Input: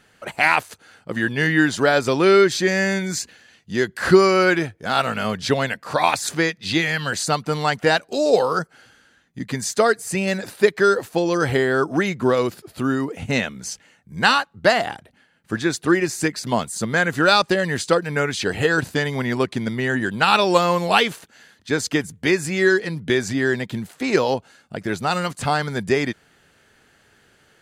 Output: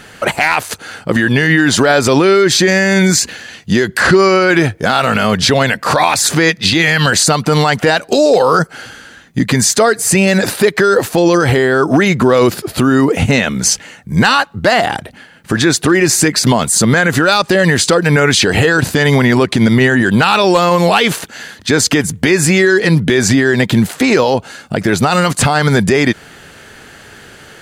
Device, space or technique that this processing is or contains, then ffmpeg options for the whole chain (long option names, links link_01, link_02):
loud club master: -filter_complex "[0:a]acompressor=threshold=-25dB:ratio=1.5,asoftclip=type=hard:threshold=-11dB,alimiter=level_in=20.5dB:limit=-1dB:release=50:level=0:latency=1,asettb=1/sr,asplit=3[link_01][link_02][link_03];[link_01]atrim=end=4.004[link_04];[link_02]atrim=start=4:end=4.49,asetpts=PTS-STARTPTS,afade=type=in:duration=0.004:curve=qsin,afade=type=out:start_time=0.486:duration=0.004:curve=qsin,lowpass=8500[link_05];[link_03]atrim=start=4.486[link_06];[link_04][link_05]acrossfade=duration=0.004:curve1=hsin:curve2=qsin[link_07];[link_07][link_06]acrossfade=duration=0.004:curve1=qsin:curve2=hsin,volume=-1dB"